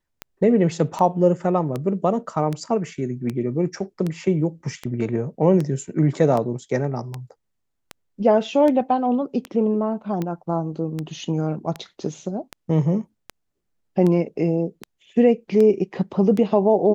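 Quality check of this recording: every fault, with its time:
scratch tick 78 rpm −14 dBFS

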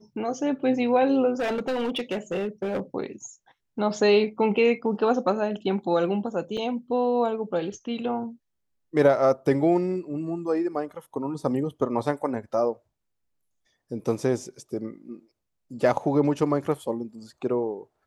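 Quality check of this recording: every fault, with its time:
0:01.39–0:02.80: clipping −23 dBFS
0:06.57–0:06.58: drop-out 5.2 ms

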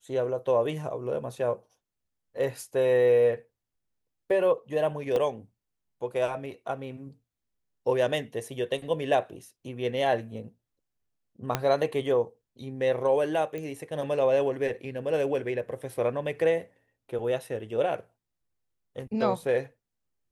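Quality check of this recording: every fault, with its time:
0:05.16: drop-out 2.7 ms
0:11.55: click −10 dBFS
0:13.58: click −24 dBFS

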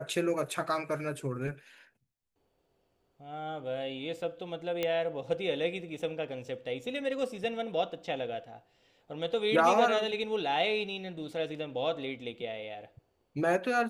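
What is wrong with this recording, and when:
0:04.83: click −17 dBFS

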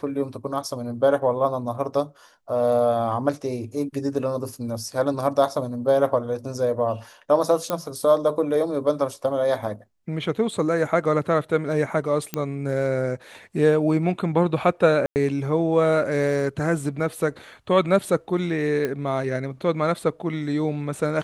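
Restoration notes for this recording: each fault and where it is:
0:07.70: click −10 dBFS
0:12.34: click −10 dBFS
0:15.06–0:15.16: drop-out 99 ms
0:18.85: click −13 dBFS

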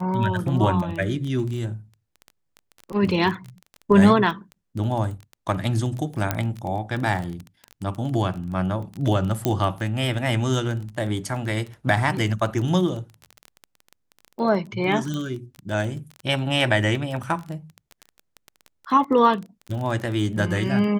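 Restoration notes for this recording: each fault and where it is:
surface crackle 17 per second −28 dBFS
0:06.31: click −7 dBFS
0:09.45: click −8 dBFS
0:15.14: click −18 dBFS

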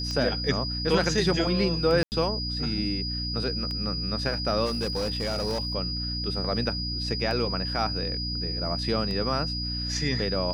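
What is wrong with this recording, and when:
mains hum 60 Hz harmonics 5 −33 dBFS
scratch tick 33 1/3 rpm −21 dBFS
whistle 4,900 Hz −31 dBFS
0:02.03–0:02.12: drop-out 89 ms
0:04.65–0:05.75: clipping −24 dBFS

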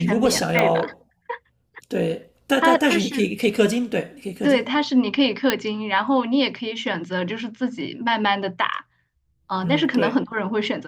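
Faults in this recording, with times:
0:00.59: click −6 dBFS
0:05.50: click −3 dBFS

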